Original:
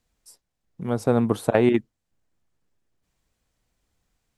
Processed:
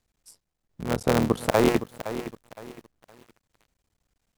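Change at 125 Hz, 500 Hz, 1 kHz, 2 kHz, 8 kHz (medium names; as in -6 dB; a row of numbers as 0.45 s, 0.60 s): -2.0 dB, -1.5 dB, +2.0 dB, +2.0 dB, +5.0 dB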